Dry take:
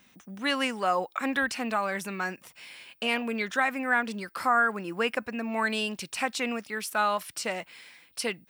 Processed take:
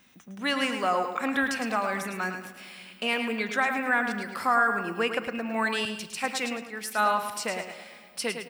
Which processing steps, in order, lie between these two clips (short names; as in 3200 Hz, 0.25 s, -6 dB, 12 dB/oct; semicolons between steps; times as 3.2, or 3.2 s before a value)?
feedback echo 0.108 s, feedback 39%, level -7.5 dB; on a send at -14 dB: reverb RT60 2.4 s, pre-delay 5 ms; 5.85–7.23 on the sum: three-band expander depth 70%